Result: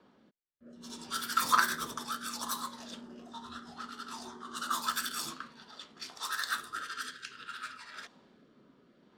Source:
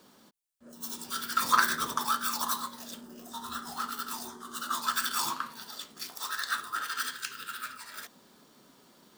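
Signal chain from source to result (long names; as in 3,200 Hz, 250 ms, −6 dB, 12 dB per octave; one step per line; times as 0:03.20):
rotating-speaker cabinet horn 0.6 Hz
low-pass that shuts in the quiet parts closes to 2,300 Hz, open at −32 dBFS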